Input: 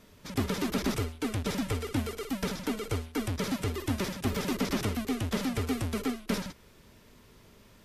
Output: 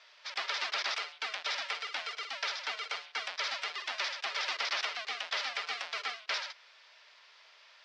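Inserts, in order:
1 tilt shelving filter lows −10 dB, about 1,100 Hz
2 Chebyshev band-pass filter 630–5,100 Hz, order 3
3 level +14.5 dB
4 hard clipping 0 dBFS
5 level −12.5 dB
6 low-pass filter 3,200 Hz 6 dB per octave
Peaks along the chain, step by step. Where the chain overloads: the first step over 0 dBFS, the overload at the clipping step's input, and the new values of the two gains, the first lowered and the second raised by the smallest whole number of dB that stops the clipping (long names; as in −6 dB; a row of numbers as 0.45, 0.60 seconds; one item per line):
−14.0, −17.5, −3.0, −3.0, −15.5, −17.0 dBFS
no step passes full scale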